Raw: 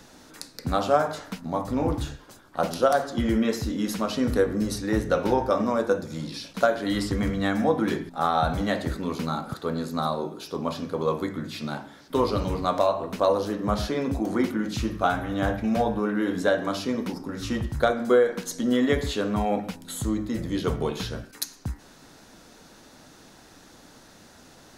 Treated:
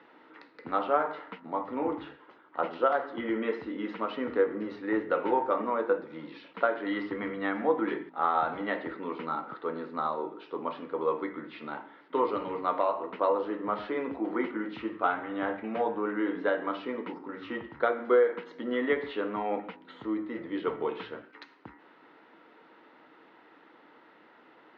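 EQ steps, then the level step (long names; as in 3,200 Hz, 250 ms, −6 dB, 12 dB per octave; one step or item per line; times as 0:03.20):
high-frequency loss of the air 140 metres
loudspeaker in its box 270–3,500 Hz, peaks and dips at 320 Hz +8 dB, 460 Hz +7 dB, 930 Hz +9 dB, 1,300 Hz +8 dB, 2,000 Hz +10 dB, 2,900 Hz +5 dB
−9.0 dB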